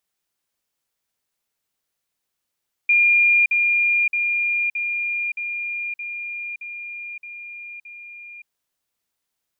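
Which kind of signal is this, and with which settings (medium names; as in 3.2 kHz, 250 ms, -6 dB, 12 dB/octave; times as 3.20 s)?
level ladder 2.41 kHz -12.5 dBFS, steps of -3 dB, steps 9, 0.57 s 0.05 s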